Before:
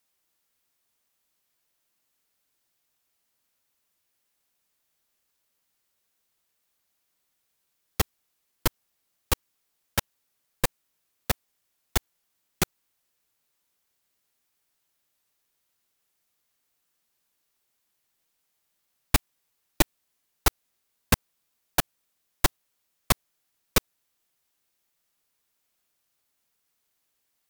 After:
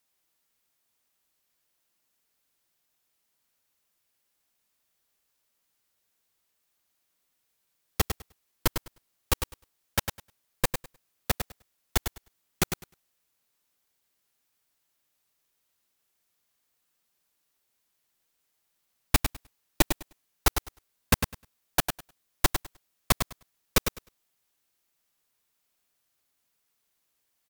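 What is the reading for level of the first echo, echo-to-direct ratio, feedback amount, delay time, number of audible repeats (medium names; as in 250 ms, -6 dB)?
-7.5 dB, -7.5 dB, 16%, 102 ms, 2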